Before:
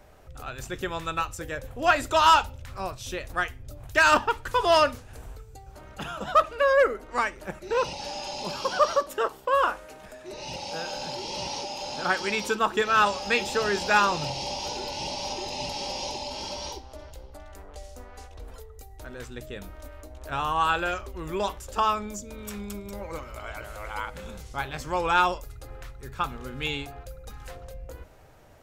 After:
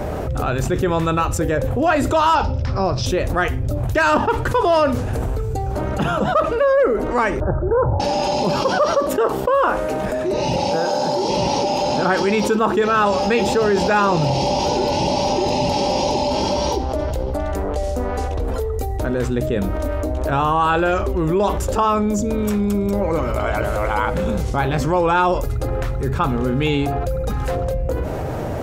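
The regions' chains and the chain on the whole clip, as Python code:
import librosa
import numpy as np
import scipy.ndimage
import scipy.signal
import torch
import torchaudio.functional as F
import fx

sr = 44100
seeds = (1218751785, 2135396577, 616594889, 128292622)

y = fx.chain(x, sr, fx.lowpass_res(hz=5200.0, q=7.1),
    fx.high_shelf(hz=2900.0, db=-11.5), at=(2.35, 3.06))
y = fx.chain(y, sr, fx.steep_lowpass(hz=1600.0, slope=96),
    fx.low_shelf_res(hz=140.0, db=9.5, q=3.0), at=(7.4, 8.0))
y = fx.chain(y, sr, fx.highpass(hz=320.0, slope=6),
    fx.peak_eq(hz=2600.0, db=-9.5, octaves=0.83), at=(10.76, 11.29))
y = fx.highpass(y, sr, hz=110.0, slope=6)
y = fx.tilt_shelf(y, sr, db=8.0, hz=940.0)
y = fx.env_flatten(y, sr, amount_pct=70)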